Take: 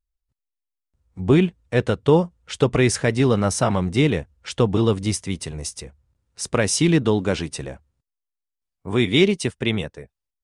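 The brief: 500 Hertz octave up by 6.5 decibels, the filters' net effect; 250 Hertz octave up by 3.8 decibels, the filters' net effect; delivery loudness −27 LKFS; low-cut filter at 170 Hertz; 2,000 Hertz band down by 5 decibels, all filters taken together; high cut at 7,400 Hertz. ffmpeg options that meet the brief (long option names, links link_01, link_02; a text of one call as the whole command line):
ffmpeg -i in.wav -af "highpass=170,lowpass=7400,equalizer=frequency=250:width_type=o:gain=4,equalizer=frequency=500:width_type=o:gain=7,equalizer=frequency=2000:width_type=o:gain=-6.5,volume=-10dB" out.wav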